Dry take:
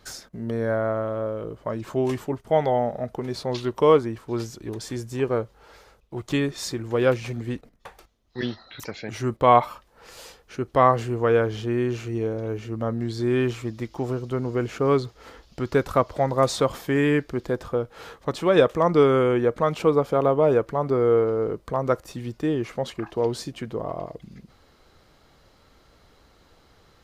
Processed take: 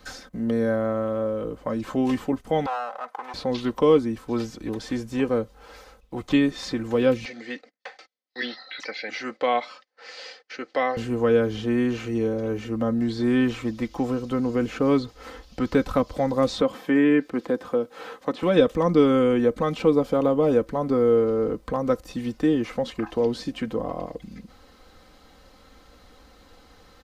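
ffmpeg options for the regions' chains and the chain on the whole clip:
-filter_complex "[0:a]asettb=1/sr,asplit=3[s0][s1][s2];[s0]atrim=end=2.664[s3];[s1]atrim=start=2.66:end=3.34,asetpts=PTS-STARTPTS,afade=t=in:d=0.004:c=qsin,afade=t=out:st=0.676:d=0.004:c=qsin,aeval=exprs='clip(val(0),-1,0.02)':c=same,highpass=f=970:t=q:w=2.7,highshelf=f=3600:g=-10.5[s4];[s2]atrim=start=3.336[s5];[s3][s4]acrossfade=d=0.004:c1=hsin:c2=qsin[s6];[s6][s5]acrossfade=d=0.004:c1=qsin:c2=hsin,asettb=1/sr,asplit=3[s7][s8][s9];[s7]atrim=end=7.254[s10];[s8]atrim=start=7.25:end=10.97,asetpts=PTS-STARTPTS,afade=t=in:d=0.004:c=qsin,afade=t=out:st=3.716:d=0.004:c=qsin,agate=range=0.0794:threshold=0.00178:ratio=16:release=100:detection=peak,highpass=500,equalizer=f=980:t=q:w=4:g=-8,equalizer=f=2000:t=q:w=4:g=7,equalizer=f=4600:t=q:w=4:g=7,lowpass=f=6300:w=0.5412,lowpass=f=6300:w=1.3066,bandreject=f=1200:w=19[s11];[s9]atrim=start=10.966[s12];[s10][s11]acrossfade=d=0.004:c1=hsin:c2=qsin[s13];[s13][s12]acrossfade=d=0.004:c1=qsin:c2=hsin,asettb=1/sr,asplit=3[s14][s15][s16];[s14]atrim=end=16.614[s17];[s15]atrim=start=16.61:end=18.43,asetpts=PTS-STARTPTS,afade=t=in:d=0.004:c=qsin,afade=t=out:st=1.816:d=0.004:c=qsin,acrossover=split=3100[s18][s19];[s19]acompressor=threshold=0.00141:ratio=4:attack=1:release=60[s20];[s18][s20]amix=inputs=2:normalize=0,highpass=200[s21];[s16]atrim=start=18.426[s22];[s17][s21]acrossfade=d=0.004:c1=hsin:c2=qsin[s23];[s23][s22]acrossfade=d=0.004:c1=qsin:c2=hsin,acrossover=split=4400[s24][s25];[s25]acompressor=threshold=0.002:ratio=4:attack=1:release=60[s26];[s24][s26]amix=inputs=2:normalize=0,aecho=1:1:3.9:0.6,acrossover=split=380|3000[s27][s28][s29];[s28]acompressor=threshold=0.02:ratio=2[s30];[s27][s30][s29]amix=inputs=3:normalize=0,volume=1.41"

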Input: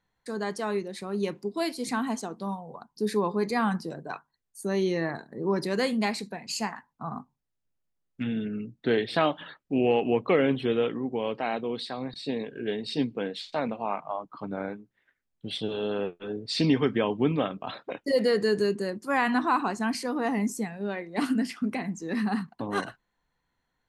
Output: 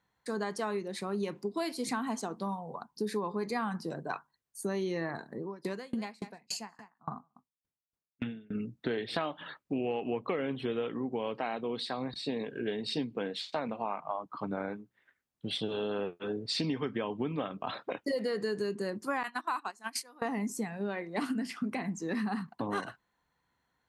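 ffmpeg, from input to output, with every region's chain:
-filter_complex "[0:a]asettb=1/sr,asplit=3[s0][s1][s2];[s0]atrim=end=5.364[s3];[s1]atrim=start=5.36:end=8.55,asetpts=PTS-STARTPTS,afade=t=in:d=0.004:c=qsin,afade=t=out:st=3.186:d=0.004:c=qsin,aecho=1:1:188:0.1,atrim=end_sample=140679,aeval=exprs='val(0)*pow(10,-31*if(lt(mod(3.5*n/s,1),2*abs(3.5)/1000),1-mod(3.5*n/s,1)/(2*abs(3.5)/1000),(mod(3.5*n/s,1)-2*abs(3.5)/1000)/(1-2*abs(3.5)/1000))/20)':c=same[s4];[s2]atrim=start=8.546[s5];[s3][s4]acrossfade=d=0.004:c1=hsin:c2=qsin[s6];[s6][s5]acrossfade=d=0.004:c1=qsin:c2=hsin,asettb=1/sr,asplit=3[s7][s8][s9];[s7]atrim=end=19.234[s10];[s8]atrim=start=19.23:end=20.22,asetpts=PTS-STARTPTS,afade=t=in:d=0.004:c=qsin,afade=t=out:st=0.986:d=0.004:c=qsin,highpass=f=970:p=1,highshelf=f=6500:g=10,agate=range=0.1:threshold=0.0251:ratio=16:release=100:detection=peak[s11];[s9]atrim=start=20.216[s12];[s10][s11]acrossfade=d=0.004:c1=hsin:c2=qsin[s13];[s13][s12]acrossfade=d=0.004:c1=qsin:c2=hsin,highpass=57,equalizer=f=1100:w=1.5:g=3,acompressor=threshold=0.0316:ratio=6"

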